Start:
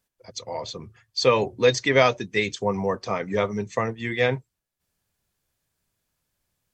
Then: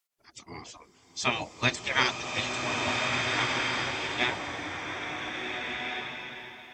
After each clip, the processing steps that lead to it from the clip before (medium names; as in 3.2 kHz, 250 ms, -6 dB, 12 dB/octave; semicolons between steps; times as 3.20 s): spectral gate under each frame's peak -15 dB weak; swelling reverb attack 1680 ms, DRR -1 dB; trim +1.5 dB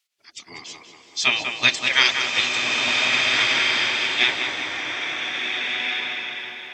frequency weighting D; tape echo 192 ms, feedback 69%, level -5 dB, low-pass 2.6 kHz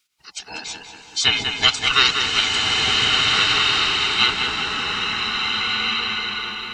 split-band scrambler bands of 500 Hz; in parallel at +1 dB: compression, threshold -30 dBFS, peak gain reduction 16.5 dB